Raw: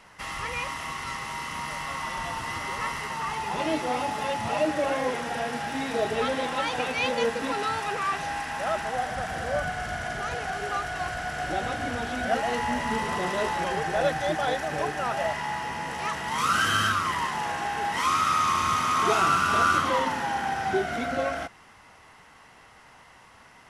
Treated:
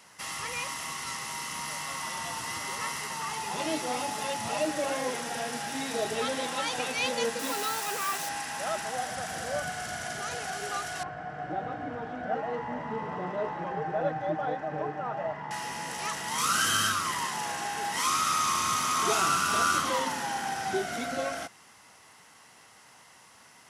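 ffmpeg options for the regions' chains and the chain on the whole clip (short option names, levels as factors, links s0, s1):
-filter_complex "[0:a]asettb=1/sr,asplit=3[s0][s1][s2];[s0]atrim=end=7.394[s3];[s1]atrim=start=7.39:end=8.29,asetpts=PTS-STARTPTS,afade=t=in:d=0.004:c=qsin,afade=t=out:st=0.896:d=0.004:c=qsin,highpass=170,acrusher=bits=5:mix=0:aa=0.5[s4];[s2]atrim=start=8.286[s5];[s3][s4]acrossfade=d=0.004:c1=hsin:c2=qsin[s6];[s6][s5]acrossfade=d=0.004:c1=qsin:c2=hsin,asettb=1/sr,asplit=3[s7][s8][s9];[s7]atrim=end=11.034[s10];[s8]atrim=start=11.03:end=15.51,asetpts=PTS-STARTPTS,afade=t=in:d=0.004:c=qsin,afade=t=out:st=4.476:d=0.004:c=qsin,lowpass=1200,aecho=1:1:6.5:0.41,atrim=end_sample=197568[s11];[s9]atrim=start=15.506[s12];[s10][s11]acrossfade=d=0.004:c1=hsin:c2=qsin[s13];[s13][s12]acrossfade=d=0.004:c1=qsin:c2=hsin,highpass=120,bass=f=250:g=1,treble=f=4000:g=12,volume=0.596"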